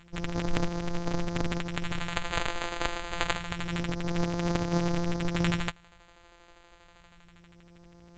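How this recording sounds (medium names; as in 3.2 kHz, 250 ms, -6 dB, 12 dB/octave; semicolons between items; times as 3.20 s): a buzz of ramps at a fixed pitch in blocks of 256 samples; phasing stages 2, 0.27 Hz, lowest notch 160–2700 Hz; aliases and images of a low sample rate 5.5 kHz, jitter 0%; A-law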